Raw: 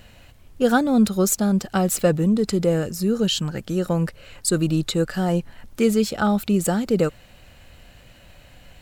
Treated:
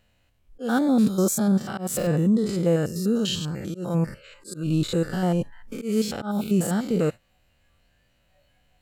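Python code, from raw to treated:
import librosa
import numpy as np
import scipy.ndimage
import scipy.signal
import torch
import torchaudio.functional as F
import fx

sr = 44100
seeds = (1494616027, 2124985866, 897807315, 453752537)

y = fx.spec_steps(x, sr, hold_ms=100)
y = fx.auto_swell(y, sr, attack_ms=187.0)
y = fx.noise_reduce_blind(y, sr, reduce_db=16)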